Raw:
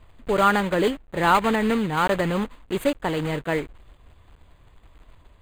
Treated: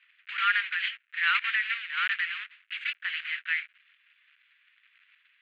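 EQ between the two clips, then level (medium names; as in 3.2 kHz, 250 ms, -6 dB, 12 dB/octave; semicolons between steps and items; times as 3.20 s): steep high-pass 1.5 kHz 48 dB/octave; resonant low-pass 2.6 kHz, resonance Q 2.4; distance through air 120 m; 0.0 dB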